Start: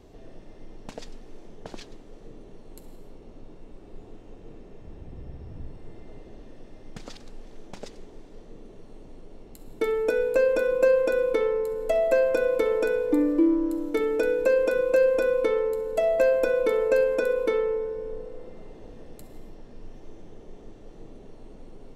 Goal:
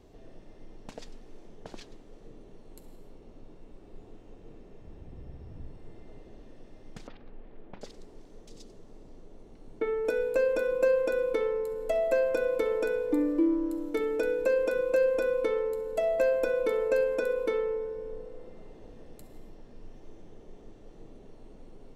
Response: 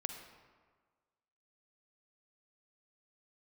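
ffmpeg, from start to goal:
-filter_complex "[0:a]asettb=1/sr,asplit=3[link_01][link_02][link_03];[link_01]atrim=end=7.074[link_04];[link_02]atrim=start=7.07:end=10.05,asetpts=PTS-STARTPTS,afade=type=in:duration=0.004:curve=qsin,afade=type=out:start_time=2.976:duration=0.004:curve=qsin,acrossover=split=3000[link_05][link_06];[link_06]adelay=740[link_07];[link_05][link_07]amix=inputs=2:normalize=0,atrim=end_sample=131418[link_08];[link_03]atrim=start=10.046[link_09];[link_04][link_08]acrossfade=duration=0.004:curve1=hsin:curve2=qsin[link_10];[link_10][link_09]acrossfade=duration=0.004:curve1=qsin:curve2=hsin,volume=-4.5dB"

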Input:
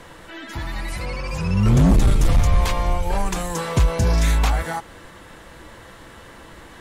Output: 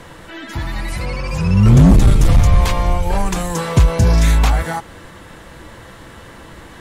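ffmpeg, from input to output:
ffmpeg -i in.wav -af "equalizer=frequency=120:width_type=o:width=2.1:gain=4,volume=3.5dB" out.wav

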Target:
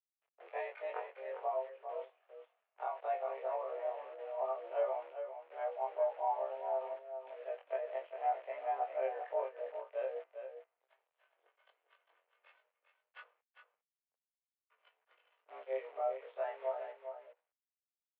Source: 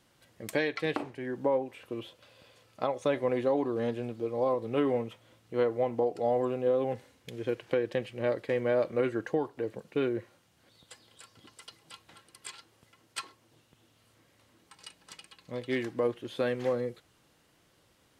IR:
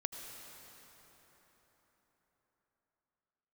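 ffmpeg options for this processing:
-filter_complex "[0:a]afftfilt=real='re':imag='-im':win_size=2048:overlap=0.75,agate=range=-33dB:threshold=-58dB:ratio=3:detection=peak,adynamicequalizer=threshold=0.00316:dfrequency=770:dqfactor=2.5:tfrequency=770:tqfactor=2.5:attack=5:release=100:ratio=0.375:range=1.5:mode=boostabove:tftype=bell,acrossover=split=990[link_01][link_02];[link_01]acontrast=30[link_03];[link_02]aeval=exprs='0.0473*(cos(1*acos(clip(val(0)/0.0473,-1,1)))-cos(1*PI/2))+0.000841*(cos(2*acos(clip(val(0)/0.0473,-1,1)))-cos(2*PI/2))+0.00266*(cos(3*acos(clip(val(0)/0.0473,-1,1)))-cos(3*PI/2))':channel_layout=same[link_04];[link_03][link_04]amix=inputs=2:normalize=0,flanger=delay=8.7:depth=9.5:regen=52:speed=0.15:shape=triangular,acrusher=bits=9:dc=4:mix=0:aa=0.000001,aecho=1:1:402:0.376,highpass=frequency=340:width_type=q:width=0.5412,highpass=frequency=340:width_type=q:width=1.307,lowpass=frequency=2700:width_type=q:width=0.5176,lowpass=frequency=2700:width_type=q:width=0.7071,lowpass=frequency=2700:width_type=q:width=1.932,afreqshift=140,volume=-5dB"

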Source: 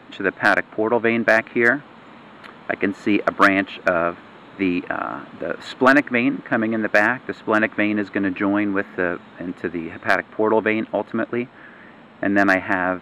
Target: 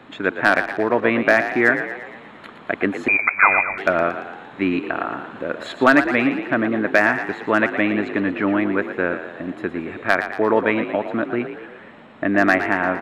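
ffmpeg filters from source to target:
ffmpeg -i in.wav -filter_complex "[0:a]asplit=2[link_01][link_02];[link_02]asplit=6[link_03][link_04][link_05][link_06][link_07][link_08];[link_03]adelay=115,afreqshift=45,volume=-10dB[link_09];[link_04]adelay=230,afreqshift=90,volume=-15.5dB[link_10];[link_05]adelay=345,afreqshift=135,volume=-21dB[link_11];[link_06]adelay=460,afreqshift=180,volume=-26.5dB[link_12];[link_07]adelay=575,afreqshift=225,volume=-32.1dB[link_13];[link_08]adelay=690,afreqshift=270,volume=-37.6dB[link_14];[link_09][link_10][link_11][link_12][link_13][link_14]amix=inputs=6:normalize=0[link_15];[link_01][link_15]amix=inputs=2:normalize=0,asettb=1/sr,asplit=3[link_16][link_17][link_18];[link_16]atrim=end=3.084[link_19];[link_17]atrim=start=3.08:end=3.78,asetpts=PTS-STARTPTS,afade=type=in:duration=0.004:curve=qsin,afade=type=out:start_time=0.696:duration=0.004:curve=qsin,lowpass=frequency=2300:width_type=q:width=0.5098,lowpass=frequency=2300:width_type=q:width=0.6013,lowpass=frequency=2300:width_type=q:width=0.9,lowpass=frequency=2300:width_type=q:width=2.563,afreqshift=-2700[link_20];[link_18]atrim=start=3.776[link_21];[link_19][link_20]acrossfade=duration=0.004:curve1=hsin:curve2=qsin[link_22];[link_22][link_21]acrossfade=duration=0.004:curve1=qsin:curve2=hsin" out.wav

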